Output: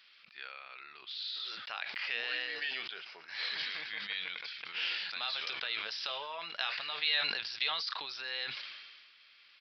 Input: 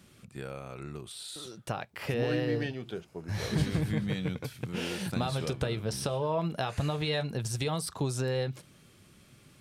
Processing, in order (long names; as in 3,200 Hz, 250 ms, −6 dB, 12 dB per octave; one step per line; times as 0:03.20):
flat-topped band-pass 3,700 Hz, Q 0.64
downsampling to 11,025 Hz
level that may fall only so fast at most 35 dB per second
level +5 dB